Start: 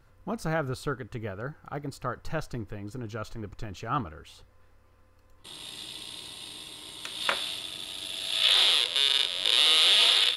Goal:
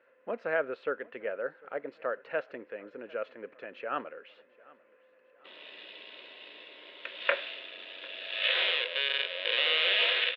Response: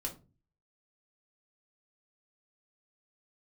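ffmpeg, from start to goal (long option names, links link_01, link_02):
-af "highpass=frequency=310:width=0.5412,highpass=frequency=310:width=1.3066,equalizer=frequency=330:width_type=q:width=4:gain=-8,equalizer=frequency=540:width_type=q:width=4:gain=10,equalizer=frequency=820:width_type=q:width=4:gain=-9,equalizer=frequency=1200:width_type=q:width=4:gain=-6,equalizer=frequency=1700:width_type=q:width=4:gain=5,equalizer=frequency=2600:width_type=q:width=4:gain=5,lowpass=frequency=2600:width=0.5412,lowpass=frequency=2600:width=1.3066,aecho=1:1:748|1496|2244:0.0631|0.0328|0.0171"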